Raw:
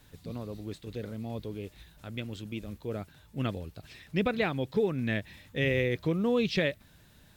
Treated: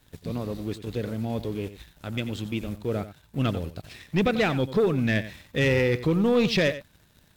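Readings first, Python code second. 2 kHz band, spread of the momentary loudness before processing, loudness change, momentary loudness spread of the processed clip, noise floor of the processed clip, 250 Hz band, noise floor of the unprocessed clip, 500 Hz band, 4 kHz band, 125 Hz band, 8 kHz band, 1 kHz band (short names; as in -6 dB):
+5.0 dB, 15 LU, +6.0 dB, 13 LU, -60 dBFS, +6.0 dB, -59 dBFS, +5.5 dB, +6.0 dB, +6.5 dB, n/a, +6.0 dB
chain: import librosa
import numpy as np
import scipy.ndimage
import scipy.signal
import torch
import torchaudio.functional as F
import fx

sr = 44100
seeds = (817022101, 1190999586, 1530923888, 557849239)

y = fx.leveller(x, sr, passes=2)
y = y + 10.0 ** (-13.5 / 20.0) * np.pad(y, (int(90 * sr / 1000.0), 0))[:len(y)]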